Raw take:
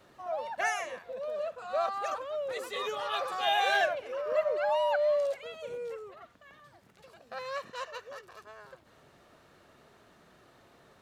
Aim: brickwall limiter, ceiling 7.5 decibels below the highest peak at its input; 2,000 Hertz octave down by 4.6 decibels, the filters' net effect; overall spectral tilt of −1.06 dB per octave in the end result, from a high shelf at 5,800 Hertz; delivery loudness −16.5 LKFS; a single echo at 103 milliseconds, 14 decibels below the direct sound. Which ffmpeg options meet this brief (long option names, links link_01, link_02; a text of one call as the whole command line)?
ffmpeg -i in.wav -af "equalizer=frequency=2000:width_type=o:gain=-7,highshelf=frequency=5800:gain=8,alimiter=limit=-24dB:level=0:latency=1,aecho=1:1:103:0.2,volume=18dB" out.wav